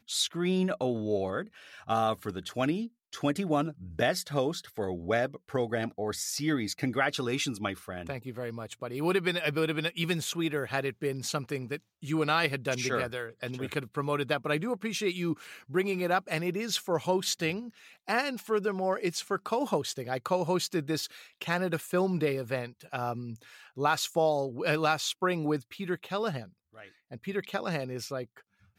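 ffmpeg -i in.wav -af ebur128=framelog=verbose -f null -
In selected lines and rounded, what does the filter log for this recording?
Integrated loudness:
  I:         -31.1 LUFS
  Threshold: -41.3 LUFS
Loudness range:
  LRA:         1.9 LU
  Threshold: -51.2 LUFS
  LRA low:   -32.0 LUFS
  LRA high:  -30.2 LUFS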